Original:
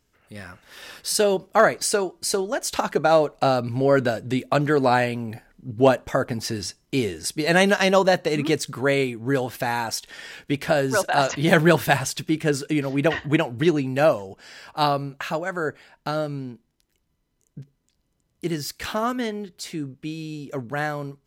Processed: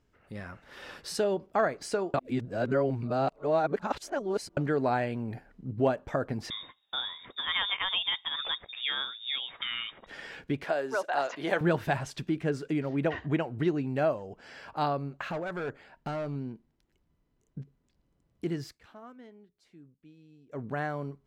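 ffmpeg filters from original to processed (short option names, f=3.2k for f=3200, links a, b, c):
-filter_complex "[0:a]asettb=1/sr,asplit=3[a][b][c];[a]atrim=end=6.504[d];[b]atrim=start=6.5:end=10.07,asetpts=PTS-STARTPTS,afade=t=in:d=0.004:c=qsin,afade=t=out:st=3.566:d=0.004:c=qsin,lowpass=f=3.2k:t=q:w=0.5098,lowpass=f=3.2k:t=q:w=0.6013,lowpass=f=3.2k:t=q:w=0.9,lowpass=f=3.2k:t=q:w=2.563,afreqshift=-3800[e];[c]atrim=start=10.066[f];[d][e]acrossfade=d=0.004:c1=hsin:c2=qsin[g];[g][f]acrossfade=d=0.004:c1=qsin:c2=hsin,asettb=1/sr,asplit=3[h][i][j];[h]atrim=end=10.644[k];[i]atrim=start=10.64:end=11.61,asetpts=PTS-STARTPTS,afade=t=in:d=0.004:c=qsin,afade=t=out:st=0.966:d=0.004:c=qsin,highpass=420[l];[j]atrim=start=11.606[m];[k][l]acrossfade=d=0.004:c1=hsin:c2=qsin[n];[n][m]acrossfade=d=0.004:c1=qsin:c2=hsin,asettb=1/sr,asplit=3[o][p][q];[o]atrim=end=15.294[r];[p]atrim=start=15.29:end=16.36,asetpts=PTS-STARTPTS,afade=t=in:d=0.004:c=qsin,afade=t=out:st=1.066:d=0.004:c=qsin,asoftclip=type=hard:threshold=-26dB[s];[q]atrim=start=16.356[t];[r][s]acrossfade=d=0.004:c1=hsin:c2=qsin[u];[u][t]acrossfade=d=0.004:c1=qsin:c2=hsin,asplit=5[v][w][x][y][z];[v]atrim=end=2.142[aa];[w]atrim=start=2.138:end=4.572,asetpts=PTS-STARTPTS,areverse[ab];[x]atrim=start=4.568:end=18.8,asetpts=PTS-STARTPTS,afade=t=out:st=14.062:d=0.17:silence=0.0707946[ac];[y]atrim=start=18.8:end=20.49,asetpts=PTS-STARTPTS,volume=-23dB[ad];[z]atrim=start=20.49,asetpts=PTS-STARTPTS,afade=t=in:d=0.17:silence=0.0707946[ae];[aa][ab]acrossfade=d=0.004:c1=hsin:c2=hsin[af];[ac][ad][ae]concat=n=3:v=0:a=1[ag];[af][ag]acrossfade=d=0.004:c1=hsin:c2=hsin,lowpass=f=1.6k:p=1,acompressor=threshold=-38dB:ratio=1.5"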